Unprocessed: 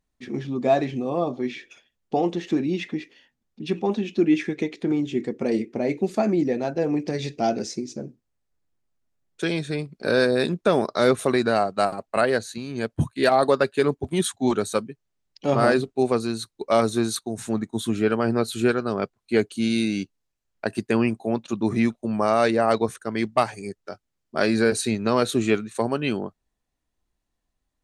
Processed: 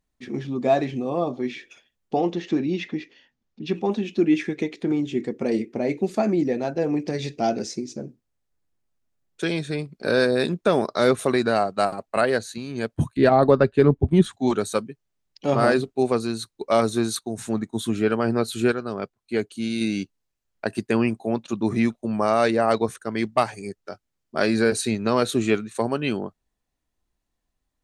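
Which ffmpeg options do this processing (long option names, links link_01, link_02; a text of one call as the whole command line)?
ffmpeg -i in.wav -filter_complex "[0:a]asettb=1/sr,asplit=3[link_01][link_02][link_03];[link_01]atrim=end=2.154[link_04];[link_02]atrim=start=2.15:end=3.75,asetpts=PTS-STARTPTS,afade=type=in:duration=0.004:curve=qsin,afade=type=out:start_time=1.596:duration=0.004:curve=qsin,lowpass=frequency=6600:width=0.5412,lowpass=frequency=6600:width=1.3066[link_05];[link_03]atrim=start=3.746[link_06];[link_04][link_05]acrossfade=duration=0.004:curve1=hsin:curve2=qsin[link_07];[link_07][link_06]acrossfade=duration=0.004:curve1=qsin:curve2=hsin,asettb=1/sr,asplit=3[link_08][link_09][link_10];[link_08]atrim=end=13.174[link_11];[link_09]atrim=start=13.17:end=14.33,asetpts=PTS-STARTPTS,afade=type=in:duration=0.004:curve=qsin,afade=type=out:start_time=1.156:duration=0.004:curve=qsin,aemphasis=mode=reproduction:type=riaa[link_12];[link_10]atrim=start=14.326[link_13];[link_11][link_12]acrossfade=duration=0.004:curve1=hsin:curve2=qsin[link_14];[link_14][link_13]acrossfade=duration=0.004:curve1=qsin:curve2=hsin,asplit=3[link_15][link_16][link_17];[link_15]atrim=end=18.722[link_18];[link_16]atrim=start=18.718:end=19.812,asetpts=PTS-STARTPTS,volume=-4dB[link_19];[link_17]atrim=start=19.808[link_20];[link_18][link_19]acrossfade=duration=0.004:curve1=hsin:curve2=hsin[link_21];[link_21][link_20]acrossfade=duration=0.004:curve1=hsin:curve2=hsin" out.wav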